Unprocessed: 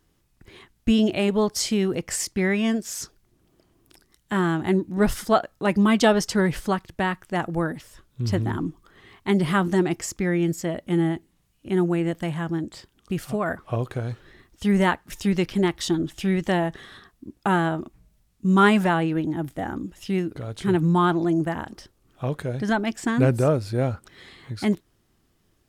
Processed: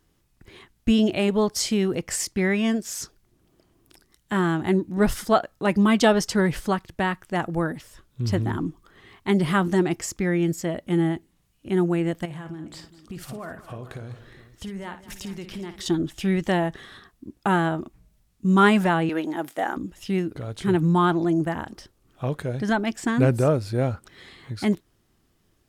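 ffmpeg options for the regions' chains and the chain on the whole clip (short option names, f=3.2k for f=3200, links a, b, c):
-filter_complex "[0:a]asettb=1/sr,asplit=3[a][b][c];[a]atrim=end=12.254[d];[b]atrim=start=12.25:end=15.86,asetpts=PTS-STARTPTS,afade=t=in:d=0.004:c=qsin,afade=t=out:st=3.606:d=0.004:c=qsin,acompressor=threshold=-33dB:ratio=5:attack=3.2:release=140:knee=1:detection=peak,aecho=1:1:56|204|412:0.299|0.15|0.15,atrim=end_sample=159201[e];[c]atrim=start=15.856[f];[d][e]acrossfade=d=0.004:c1=hsin:c2=qsin[g];[g][f]acrossfade=d=0.004:c1=qsin:c2=hsin,asettb=1/sr,asplit=3[h][i][j];[h]atrim=end=19.094[k];[i]atrim=start=19.09:end=19.77,asetpts=PTS-STARTPTS,afade=t=in:d=0.004:c=qsin,afade=t=out:st=0.676:d=0.004:c=qsin,highpass=480,acontrast=57[l];[j]atrim=start=19.766[m];[k][l]acrossfade=d=0.004:c1=hsin:c2=qsin[n];[n][m]acrossfade=d=0.004:c1=qsin:c2=hsin"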